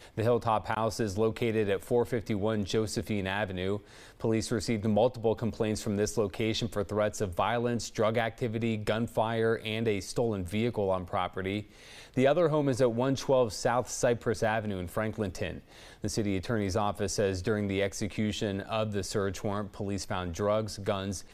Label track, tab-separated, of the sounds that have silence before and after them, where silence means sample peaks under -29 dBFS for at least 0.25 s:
4.240000	11.600000	sound
12.170000	15.530000	sound